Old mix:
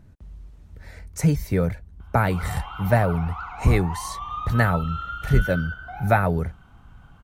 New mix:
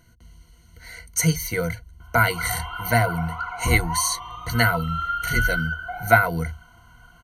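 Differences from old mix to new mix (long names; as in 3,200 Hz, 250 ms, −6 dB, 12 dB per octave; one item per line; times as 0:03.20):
speech: add tilt shelving filter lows −8.5 dB, about 1,100 Hz
master: add EQ curve with evenly spaced ripples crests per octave 1.9, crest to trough 18 dB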